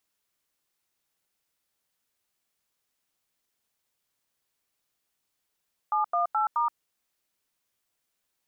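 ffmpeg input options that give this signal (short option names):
-f lavfi -i "aevalsrc='0.0562*clip(min(mod(t,0.213),0.124-mod(t,0.213))/0.002,0,1)*(eq(floor(t/0.213),0)*(sin(2*PI*852*mod(t,0.213))+sin(2*PI*1209*mod(t,0.213)))+eq(floor(t/0.213),1)*(sin(2*PI*697*mod(t,0.213))+sin(2*PI*1209*mod(t,0.213)))+eq(floor(t/0.213),2)*(sin(2*PI*852*mod(t,0.213))+sin(2*PI*1336*mod(t,0.213)))+eq(floor(t/0.213),3)*(sin(2*PI*941*mod(t,0.213))+sin(2*PI*1209*mod(t,0.213))))':d=0.852:s=44100"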